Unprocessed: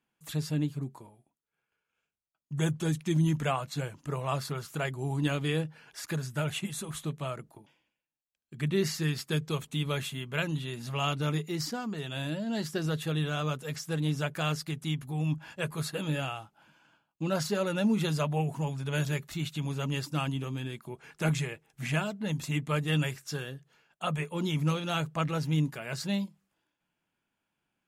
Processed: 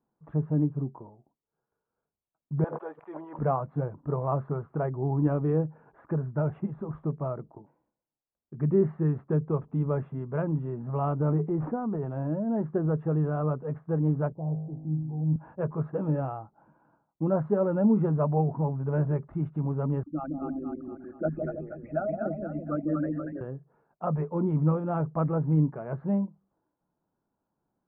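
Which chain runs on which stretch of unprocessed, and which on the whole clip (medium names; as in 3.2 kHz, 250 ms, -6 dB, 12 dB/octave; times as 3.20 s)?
2.64–3.39 s: high-pass 550 Hz 24 dB/octave + treble shelf 6.8 kHz +11.5 dB + decay stretcher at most 28 dB/s
11.15–12.33 s: median filter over 9 samples + transient shaper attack +1 dB, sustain +7 dB
14.32–15.36 s: steep low-pass 940 Hz 72 dB/octave + bass shelf 200 Hz +9 dB + feedback comb 52 Hz, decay 1.4 s, mix 80%
20.03–23.41 s: resonances exaggerated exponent 3 + static phaser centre 660 Hz, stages 8 + two-band feedback delay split 670 Hz, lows 163 ms, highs 237 ms, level -3 dB
whole clip: inverse Chebyshev low-pass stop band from 4.7 kHz, stop band 70 dB; peaking EQ 420 Hz +2 dB; trim +4 dB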